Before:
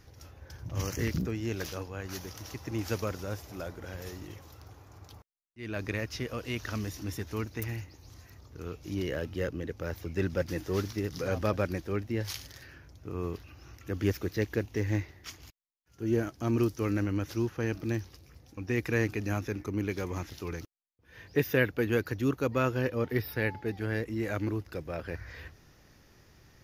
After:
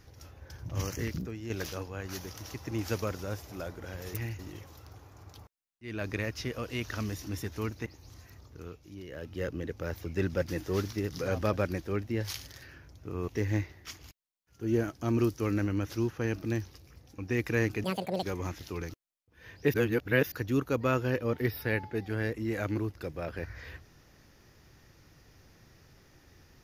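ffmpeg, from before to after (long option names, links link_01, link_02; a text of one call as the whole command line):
ffmpeg -i in.wav -filter_complex "[0:a]asplit=12[link_01][link_02][link_03][link_04][link_05][link_06][link_07][link_08][link_09][link_10][link_11][link_12];[link_01]atrim=end=1.5,asetpts=PTS-STARTPTS,afade=type=out:start_time=0.79:duration=0.71:curve=qua:silence=0.473151[link_13];[link_02]atrim=start=1.5:end=4.142,asetpts=PTS-STARTPTS,afade=type=in:duration=0.004:curve=hsin:silence=0.473151[link_14];[link_03]atrim=start=7.608:end=7.862[link_15];[link_04]atrim=start=4.138:end=7.612[link_16];[link_05]atrim=start=7.858:end=8.89,asetpts=PTS-STARTPTS,afade=type=out:start_time=0.552:duration=0.48:silence=0.251189[link_17];[link_06]atrim=start=8.89:end=9.08,asetpts=PTS-STARTPTS,volume=-12dB[link_18];[link_07]atrim=start=9.08:end=13.282,asetpts=PTS-STARTPTS,afade=type=in:duration=0.48:silence=0.251189[link_19];[link_08]atrim=start=14.668:end=19.234[link_20];[link_09]atrim=start=19.23:end=19.94,asetpts=PTS-STARTPTS,asetrate=80703,aresample=44100[link_21];[link_10]atrim=start=19.936:end=21.452[link_22];[link_11]atrim=start=21.448:end=22.032,asetpts=PTS-STARTPTS,areverse[link_23];[link_12]atrim=start=22.028[link_24];[link_13][link_14]concat=n=2:v=0:a=1[link_25];[link_25][link_15]acrossfade=duration=0.004:curve1=hsin:curve2=hsin[link_26];[link_26][link_16]acrossfade=duration=0.004:curve1=hsin:curve2=hsin[link_27];[link_17][link_18][link_19]concat=n=3:v=0:a=1[link_28];[link_27][link_28]acrossfade=duration=0.004:curve1=hsin:curve2=hsin[link_29];[link_29][link_20]acrossfade=duration=0.004:curve1=hsin:curve2=hsin[link_30];[link_30][link_21]acrossfade=duration=0.004:curve1=hsin:curve2=hsin[link_31];[link_31][link_22]acrossfade=duration=0.004:curve1=hsin:curve2=hsin[link_32];[link_32][link_23]acrossfade=duration=0.004:curve1=hsin:curve2=hsin[link_33];[link_33][link_24]acrossfade=duration=0.004:curve1=hsin:curve2=hsin" out.wav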